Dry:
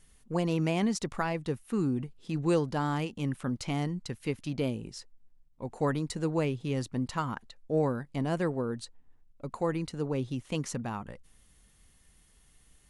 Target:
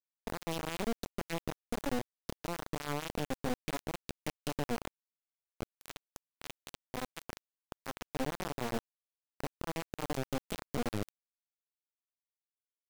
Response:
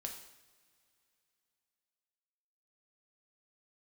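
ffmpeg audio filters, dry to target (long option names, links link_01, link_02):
-filter_complex "[0:a]aeval=exprs='val(0)+0.5*0.015*sgn(val(0))':channel_layout=same,acompressor=threshold=-34dB:ratio=8,equalizer=frequency=250:width_type=o:width=1:gain=12,equalizer=frequency=500:width_type=o:width=1:gain=3,equalizer=frequency=1000:width_type=o:width=1:gain=-8,equalizer=frequency=2000:width_type=o:width=1:gain=4,flanger=delay=18.5:depth=6.2:speed=0.26,alimiter=level_in=4.5dB:limit=-24dB:level=0:latency=1:release=144,volume=-4.5dB,asettb=1/sr,asplit=3[link_01][link_02][link_03];[link_01]atrim=end=5.634[link_04];[link_02]atrim=start=5.63:end=7.97,asetpts=PTS-STARTPTS,afade=type=in:duration=0.004:curve=qsin,afade=type=out:start_time=2.336:duration=0.004:curve=qsin,lowshelf=frequency=370:gain=-4[link_05];[link_03]atrim=start=7.966[link_06];[link_04][link_05]acrossfade=duration=0.004:curve1=hsin:curve2=qsin[link_07];[link_07][link_06]acrossfade=duration=0.004:curve1=qsin:curve2=hsin,aeval=exprs='(tanh(14.1*val(0)+0.7)-tanh(0.7))/14.1':channel_layout=same,aeval=exprs='val(0)*gte(abs(val(0)),0.0178)':channel_layout=same,volume=7.5dB"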